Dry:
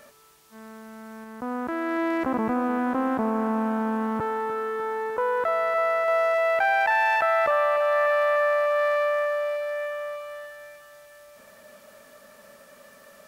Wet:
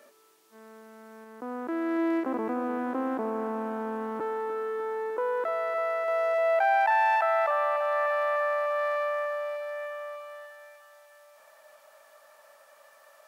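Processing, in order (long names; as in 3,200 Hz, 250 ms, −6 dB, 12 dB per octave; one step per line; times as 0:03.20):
high-pass filter sweep 330 Hz → 770 Hz, 0:06.08–0:06.80
every ending faded ahead of time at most 140 dB per second
level −7 dB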